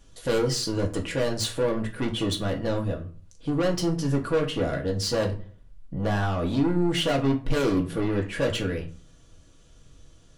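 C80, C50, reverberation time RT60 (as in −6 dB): 17.0 dB, 13.0 dB, 0.45 s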